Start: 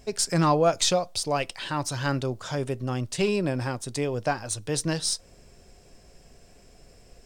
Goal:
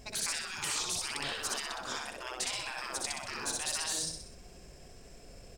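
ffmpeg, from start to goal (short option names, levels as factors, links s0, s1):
-af "atempo=1.3,aecho=1:1:63|126|189|252|315|378:0.631|0.315|0.158|0.0789|0.0394|0.0197,afftfilt=real='re*lt(hypot(re,im),0.0631)':imag='im*lt(hypot(re,im),0.0631)':win_size=1024:overlap=0.75"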